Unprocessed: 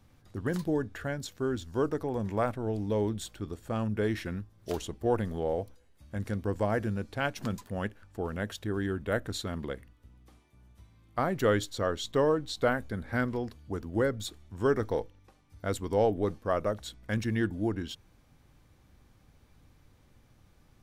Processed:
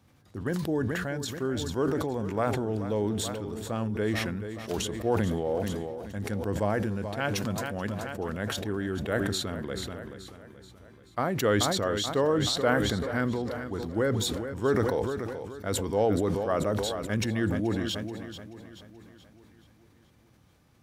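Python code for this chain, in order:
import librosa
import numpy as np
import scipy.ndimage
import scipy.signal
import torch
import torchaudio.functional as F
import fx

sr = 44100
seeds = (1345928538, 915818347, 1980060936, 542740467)

p1 = scipy.signal.sosfilt(scipy.signal.butter(2, 81.0, 'highpass', fs=sr, output='sos'), x)
p2 = p1 + fx.echo_feedback(p1, sr, ms=431, feedback_pct=55, wet_db=-13.0, dry=0)
y = fx.sustainer(p2, sr, db_per_s=23.0)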